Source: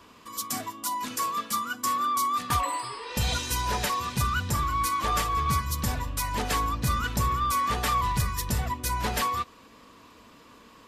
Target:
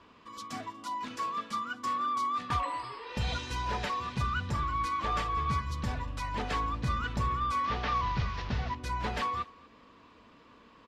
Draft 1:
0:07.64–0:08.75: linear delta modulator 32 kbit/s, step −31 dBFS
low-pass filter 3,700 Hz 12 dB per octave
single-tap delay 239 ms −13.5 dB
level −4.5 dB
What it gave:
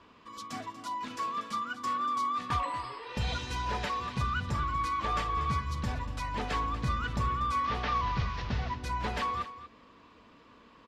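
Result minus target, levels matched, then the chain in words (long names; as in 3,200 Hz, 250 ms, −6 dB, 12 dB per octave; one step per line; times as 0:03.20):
echo-to-direct +11 dB
0:07.64–0:08.75: linear delta modulator 32 kbit/s, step −31 dBFS
low-pass filter 3,700 Hz 12 dB per octave
single-tap delay 239 ms −24.5 dB
level −4.5 dB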